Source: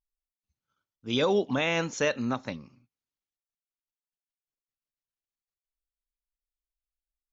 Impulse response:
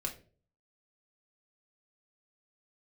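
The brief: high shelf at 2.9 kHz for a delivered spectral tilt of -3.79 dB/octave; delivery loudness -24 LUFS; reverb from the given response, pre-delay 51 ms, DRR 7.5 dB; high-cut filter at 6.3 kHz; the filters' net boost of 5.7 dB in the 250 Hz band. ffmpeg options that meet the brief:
-filter_complex "[0:a]lowpass=6300,equalizer=f=250:t=o:g=6.5,highshelf=f=2900:g=5.5,asplit=2[s0][s1];[1:a]atrim=start_sample=2205,adelay=51[s2];[s1][s2]afir=irnorm=-1:irlink=0,volume=0.376[s3];[s0][s3]amix=inputs=2:normalize=0"

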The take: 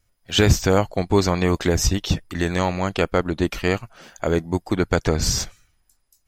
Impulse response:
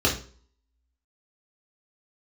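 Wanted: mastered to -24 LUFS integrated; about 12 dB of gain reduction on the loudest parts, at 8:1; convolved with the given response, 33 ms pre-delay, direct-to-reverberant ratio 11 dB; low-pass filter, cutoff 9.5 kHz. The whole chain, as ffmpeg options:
-filter_complex "[0:a]lowpass=9500,acompressor=threshold=0.0794:ratio=8,asplit=2[s0][s1];[1:a]atrim=start_sample=2205,adelay=33[s2];[s1][s2]afir=irnorm=-1:irlink=0,volume=0.0501[s3];[s0][s3]amix=inputs=2:normalize=0,volume=1.5"

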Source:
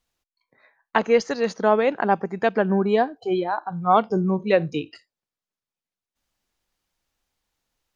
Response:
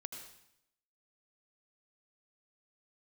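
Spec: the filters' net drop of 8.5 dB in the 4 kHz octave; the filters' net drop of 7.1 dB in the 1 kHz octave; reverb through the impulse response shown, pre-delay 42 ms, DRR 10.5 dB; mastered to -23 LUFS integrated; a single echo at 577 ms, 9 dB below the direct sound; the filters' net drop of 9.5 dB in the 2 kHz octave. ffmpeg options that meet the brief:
-filter_complex "[0:a]equalizer=f=1000:t=o:g=-8.5,equalizer=f=2000:t=o:g=-7.5,equalizer=f=4000:t=o:g=-8,aecho=1:1:577:0.355,asplit=2[s0][s1];[1:a]atrim=start_sample=2205,adelay=42[s2];[s1][s2]afir=irnorm=-1:irlink=0,volume=0.422[s3];[s0][s3]amix=inputs=2:normalize=0,volume=1.19"

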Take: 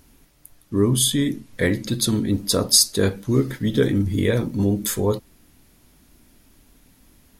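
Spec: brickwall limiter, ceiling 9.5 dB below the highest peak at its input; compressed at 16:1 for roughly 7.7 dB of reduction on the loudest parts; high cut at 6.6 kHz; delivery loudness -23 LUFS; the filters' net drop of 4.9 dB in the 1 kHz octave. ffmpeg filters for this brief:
-af "lowpass=6600,equalizer=f=1000:t=o:g=-6.5,acompressor=threshold=0.0891:ratio=16,volume=2,alimiter=limit=0.211:level=0:latency=1"

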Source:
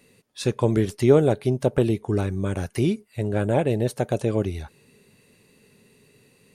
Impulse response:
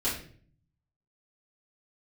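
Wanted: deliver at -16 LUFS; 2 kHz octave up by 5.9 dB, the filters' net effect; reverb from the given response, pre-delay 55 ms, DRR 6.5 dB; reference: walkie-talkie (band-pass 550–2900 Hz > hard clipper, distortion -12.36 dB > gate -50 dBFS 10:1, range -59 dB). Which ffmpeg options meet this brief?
-filter_complex "[0:a]equalizer=f=2000:t=o:g=9,asplit=2[s0][s1];[1:a]atrim=start_sample=2205,adelay=55[s2];[s1][s2]afir=irnorm=-1:irlink=0,volume=0.188[s3];[s0][s3]amix=inputs=2:normalize=0,highpass=550,lowpass=2900,asoftclip=type=hard:threshold=0.112,agate=range=0.00112:threshold=0.00316:ratio=10,volume=4.73"

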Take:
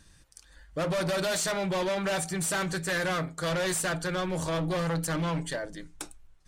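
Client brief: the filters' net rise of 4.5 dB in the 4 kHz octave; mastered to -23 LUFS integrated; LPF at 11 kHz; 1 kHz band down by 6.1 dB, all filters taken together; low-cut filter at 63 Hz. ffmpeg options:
-af "highpass=63,lowpass=11000,equalizer=f=1000:t=o:g=-9,equalizer=f=4000:t=o:g=6,volume=2.24"

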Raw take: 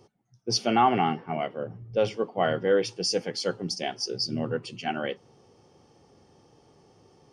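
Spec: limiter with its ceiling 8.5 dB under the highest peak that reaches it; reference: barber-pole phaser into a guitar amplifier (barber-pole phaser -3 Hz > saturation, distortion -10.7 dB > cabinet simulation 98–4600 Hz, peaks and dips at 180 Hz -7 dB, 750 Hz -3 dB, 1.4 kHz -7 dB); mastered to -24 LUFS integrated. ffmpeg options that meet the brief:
-filter_complex "[0:a]alimiter=limit=0.106:level=0:latency=1,asplit=2[s0][s1];[s1]afreqshift=-3[s2];[s0][s2]amix=inputs=2:normalize=1,asoftclip=threshold=0.0316,highpass=98,equalizer=f=180:t=q:w=4:g=-7,equalizer=f=750:t=q:w=4:g=-3,equalizer=f=1400:t=q:w=4:g=-7,lowpass=f=4600:w=0.5412,lowpass=f=4600:w=1.3066,volume=5.96"

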